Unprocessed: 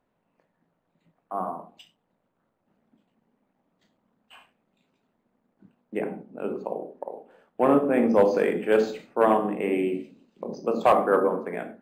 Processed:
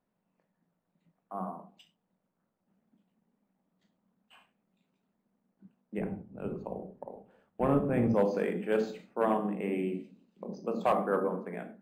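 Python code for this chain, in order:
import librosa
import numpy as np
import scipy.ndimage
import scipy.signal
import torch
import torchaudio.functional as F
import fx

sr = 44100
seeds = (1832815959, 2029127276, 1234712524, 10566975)

y = fx.octave_divider(x, sr, octaves=1, level_db=-2.0, at=(5.97, 8.14))
y = fx.peak_eq(y, sr, hz=190.0, db=10.0, octaves=0.35)
y = F.gain(torch.from_numpy(y), -8.5).numpy()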